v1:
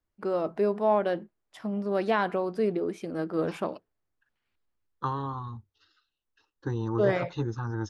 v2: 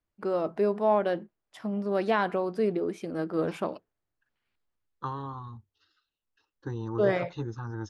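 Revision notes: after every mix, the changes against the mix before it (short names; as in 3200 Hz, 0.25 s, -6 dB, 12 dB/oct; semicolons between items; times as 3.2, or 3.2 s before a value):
second voice -4.0 dB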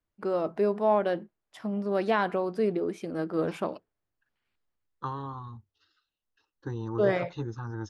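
none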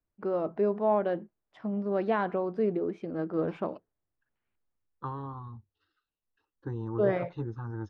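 master: add tape spacing loss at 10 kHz 30 dB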